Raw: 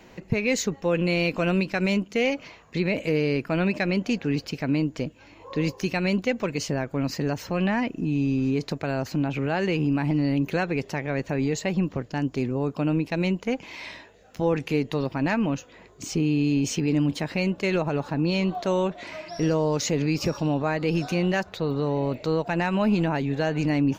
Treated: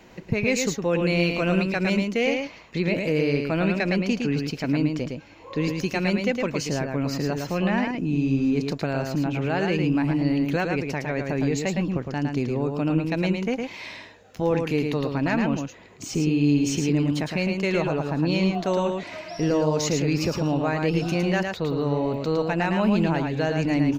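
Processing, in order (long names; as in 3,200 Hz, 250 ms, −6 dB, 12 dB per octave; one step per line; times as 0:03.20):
single-tap delay 110 ms −4.5 dB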